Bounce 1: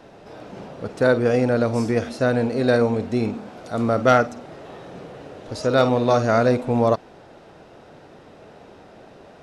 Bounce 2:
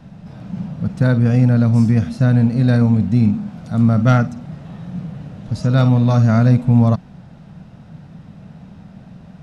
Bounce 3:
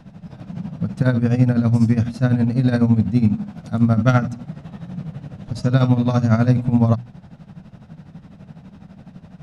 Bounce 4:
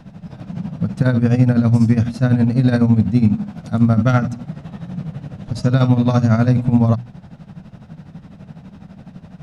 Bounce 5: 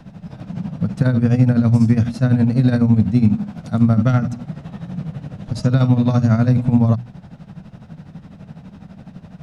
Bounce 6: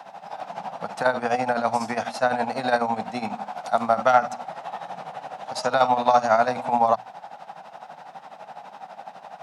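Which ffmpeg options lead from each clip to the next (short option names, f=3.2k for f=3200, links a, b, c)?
-af "lowshelf=f=260:t=q:w=3:g=13,volume=-2.5dB"
-af "tremolo=f=12:d=0.75,bandreject=f=60:t=h:w=6,bandreject=f=120:t=h:w=6,volume=1.5dB"
-af "alimiter=level_in=6dB:limit=-1dB:release=50:level=0:latency=1,volume=-3dB"
-filter_complex "[0:a]acrossover=split=300[a][b];[b]acompressor=threshold=-22dB:ratio=4[c];[a][c]amix=inputs=2:normalize=0"
-af "highpass=f=790:t=q:w=4.9,volume=3dB"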